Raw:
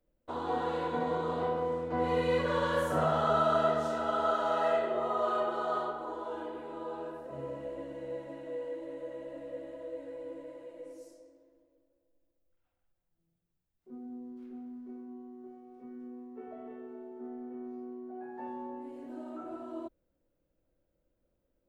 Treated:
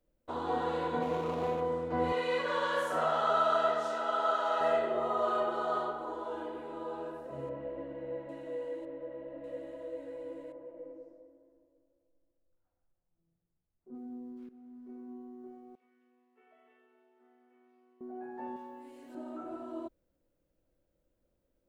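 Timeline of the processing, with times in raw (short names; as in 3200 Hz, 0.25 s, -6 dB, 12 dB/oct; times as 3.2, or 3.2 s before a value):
1.02–1.61 median filter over 25 samples
2.12–4.61 weighting filter A
7.49–8.29 LPF 2400 Hz
8.85–9.44 air absorption 430 m
10.52–13.95 LPF 1200 Hz
14.49–15.11 fade in linear, from -15 dB
15.75–18.01 band-pass 2700 Hz, Q 2
18.56–19.15 tilt shelf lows -8 dB, about 1500 Hz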